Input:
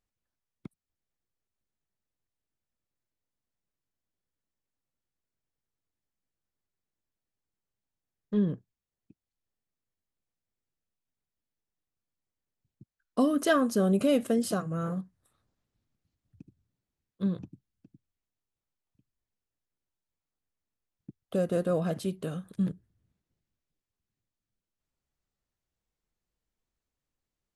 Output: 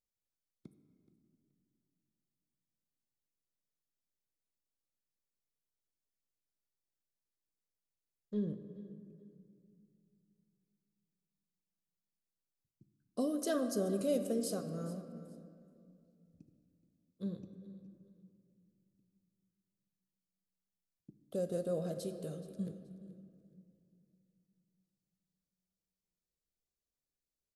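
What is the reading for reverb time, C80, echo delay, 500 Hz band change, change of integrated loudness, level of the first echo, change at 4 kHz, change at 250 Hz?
2.4 s, 9.5 dB, 426 ms, −7.0 dB, −9.0 dB, −18.0 dB, −9.0 dB, −9.5 dB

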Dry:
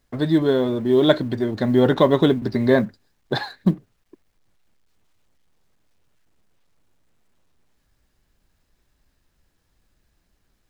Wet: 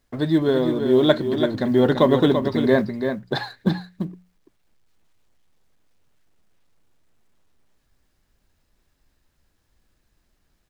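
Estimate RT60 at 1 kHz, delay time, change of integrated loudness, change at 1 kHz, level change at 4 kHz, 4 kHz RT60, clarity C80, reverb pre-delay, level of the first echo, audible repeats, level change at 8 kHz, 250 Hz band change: no reverb audible, 338 ms, −0.5 dB, 0.0 dB, 0.0 dB, no reverb audible, no reverb audible, no reverb audible, −7.0 dB, 1, can't be measured, −0.5 dB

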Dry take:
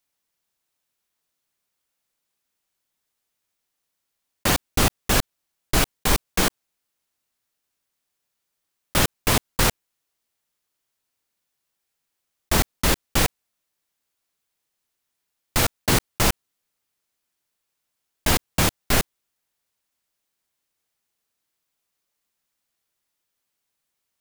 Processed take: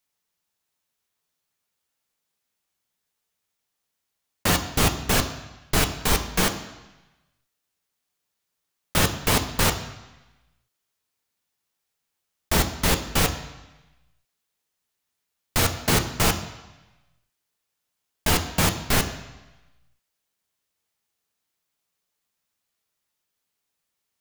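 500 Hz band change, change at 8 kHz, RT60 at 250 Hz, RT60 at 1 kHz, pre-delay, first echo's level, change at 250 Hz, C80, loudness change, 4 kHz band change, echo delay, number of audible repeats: −0.5 dB, −1.0 dB, 1.0 s, 1.1 s, 3 ms, no echo audible, 0.0 dB, 12.5 dB, −0.5 dB, 0.0 dB, no echo audible, no echo audible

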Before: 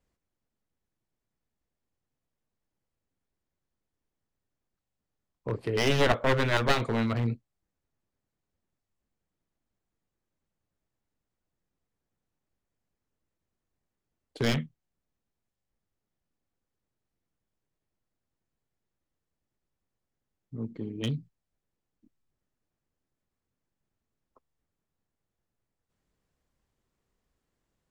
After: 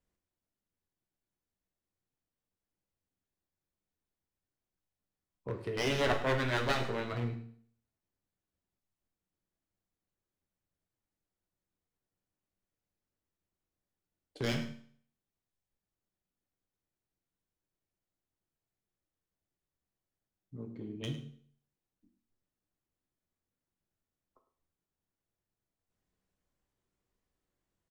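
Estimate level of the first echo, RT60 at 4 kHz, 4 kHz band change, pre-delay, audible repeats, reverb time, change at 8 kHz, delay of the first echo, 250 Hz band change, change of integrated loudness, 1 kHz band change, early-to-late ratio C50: −14.5 dB, 0.55 s, −5.5 dB, 9 ms, 1, 0.55 s, −5.5 dB, 104 ms, −7.0 dB, −6.0 dB, −5.5 dB, 8.5 dB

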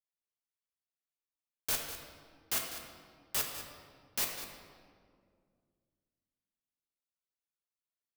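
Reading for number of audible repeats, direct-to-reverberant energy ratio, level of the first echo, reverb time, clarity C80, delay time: 1, 0.5 dB, −11.5 dB, 2.1 s, 5.0 dB, 199 ms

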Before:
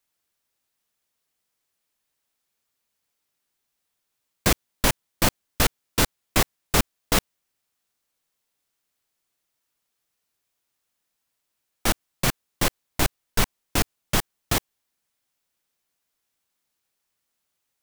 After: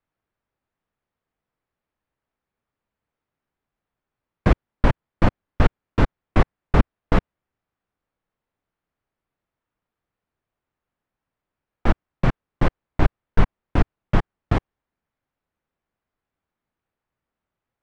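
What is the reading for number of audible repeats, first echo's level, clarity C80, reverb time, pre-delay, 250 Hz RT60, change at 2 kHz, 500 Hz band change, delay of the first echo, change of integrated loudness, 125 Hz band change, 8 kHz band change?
no echo audible, no echo audible, no reverb audible, no reverb audible, no reverb audible, no reverb audible, −3.0 dB, +2.5 dB, no echo audible, +0.5 dB, +7.5 dB, below −25 dB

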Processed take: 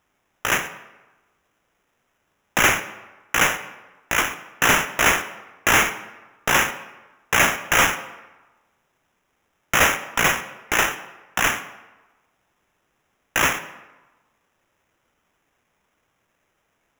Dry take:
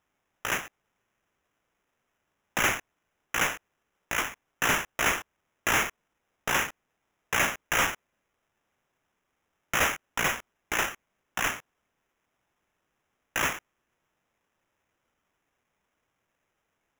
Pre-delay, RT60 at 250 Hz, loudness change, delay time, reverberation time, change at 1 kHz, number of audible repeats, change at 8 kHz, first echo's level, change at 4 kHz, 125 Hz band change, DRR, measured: 35 ms, 1.1 s, +8.0 dB, no echo audible, 1.1 s, +8.5 dB, no echo audible, +8.0 dB, no echo audible, +8.0 dB, +8.0 dB, 11.5 dB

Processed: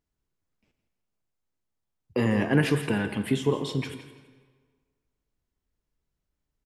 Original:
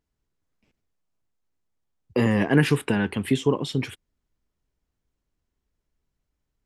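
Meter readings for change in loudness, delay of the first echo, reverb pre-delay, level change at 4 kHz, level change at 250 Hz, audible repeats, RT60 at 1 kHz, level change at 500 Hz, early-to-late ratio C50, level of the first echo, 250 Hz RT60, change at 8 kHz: −3.0 dB, 165 ms, 16 ms, −3.0 dB, −3.0 dB, 2, 1.6 s, −2.5 dB, 9.5 dB, −14.0 dB, 1.5 s, −3.0 dB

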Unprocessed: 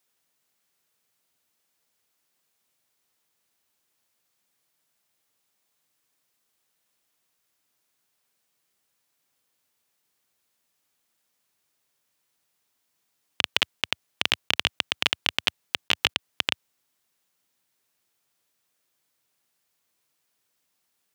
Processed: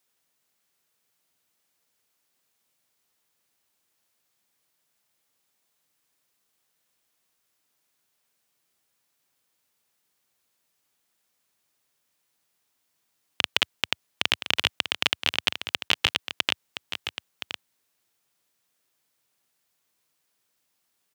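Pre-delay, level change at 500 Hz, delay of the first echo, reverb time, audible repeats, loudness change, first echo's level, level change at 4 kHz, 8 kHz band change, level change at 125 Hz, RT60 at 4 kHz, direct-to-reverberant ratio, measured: no reverb audible, +0.5 dB, 1,020 ms, no reverb audible, 1, 0.0 dB, −10.0 dB, +0.5 dB, +0.5 dB, +0.5 dB, no reverb audible, no reverb audible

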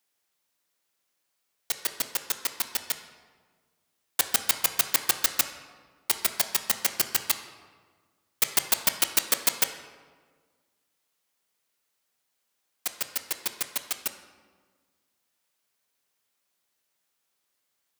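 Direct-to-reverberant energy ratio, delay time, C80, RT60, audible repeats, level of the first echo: 7.0 dB, no echo audible, 11.0 dB, 1.6 s, no echo audible, no echo audible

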